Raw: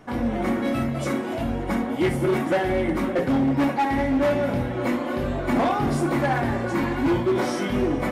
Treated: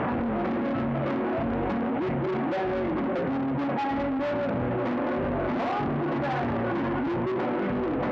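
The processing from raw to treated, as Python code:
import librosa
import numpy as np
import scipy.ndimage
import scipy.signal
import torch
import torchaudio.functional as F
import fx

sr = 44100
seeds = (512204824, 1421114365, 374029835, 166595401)

p1 = fx.delta_mod(x, sr, bps=16000, step_db=-27.0)
p2 = scipy.signal.sosfilt(scipy.signal.butter(2, 1300.0, 'lowpass', fs=sr, output='sos'), p1)
p3 = fx.rider(p2, sr, range_db=10, speed_s=0.5)
p4 = p2 + (p3 * 10.0 ** (2.0 / 20.0))
p5 = 10.0 ** (-19.0 / 20.0) * np.tanh(p4 / 10.0 ** (-19.0 / 20.0))
p6 = fx.highpass(p5, sr, hz=130.0, slope=6)
p7 = fx.env_flatten(p6, sr, amount_pct=100)
y = p7 * 10.0 ** (-7.0 / 20.0)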